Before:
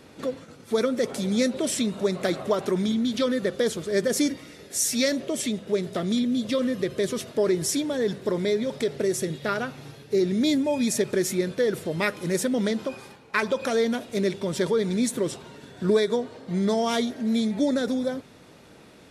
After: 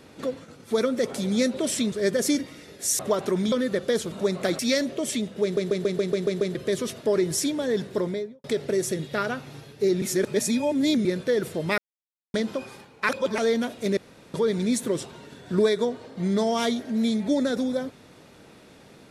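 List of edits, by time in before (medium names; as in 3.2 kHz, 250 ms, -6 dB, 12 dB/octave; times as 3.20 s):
1.92–2.39 s: swap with 3.83–4.90 s
2.92–3.23 s: delete
5.74 s: stutter in place 0.14 s, 8 plays
8.26–8.75 s: studio fade out
10.33–11.36 s: reverse
12.09–12.65 s: mute
13.40–13.69 s: reverse
14.28–14.65 s: room tone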